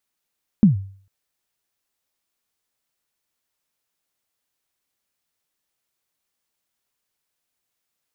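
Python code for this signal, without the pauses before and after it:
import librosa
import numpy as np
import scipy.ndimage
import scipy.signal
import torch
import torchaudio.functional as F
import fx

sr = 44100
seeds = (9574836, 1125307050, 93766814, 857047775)

y = fx.drum_kick(sr, seeds[0], length_s=0.45, level_db=-5.5, start_hz=230.0, end_hz=97.0, sweep_ms=130.0, decay_s=0.49, click=False)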